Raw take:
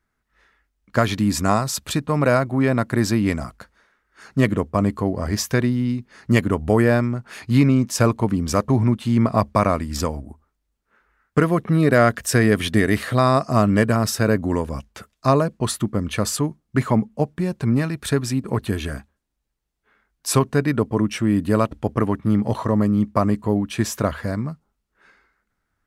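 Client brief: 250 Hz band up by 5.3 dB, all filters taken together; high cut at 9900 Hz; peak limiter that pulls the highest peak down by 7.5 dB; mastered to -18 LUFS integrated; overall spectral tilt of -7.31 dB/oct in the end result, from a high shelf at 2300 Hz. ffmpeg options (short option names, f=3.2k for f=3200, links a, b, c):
-af "lowpass=9.9k,equalizer=f=250:t=o:g=6.5,highshelf=f=2.3k:g=-6.5,volume=2dB,alimiter=limit=-6dB:level=0:latency=1"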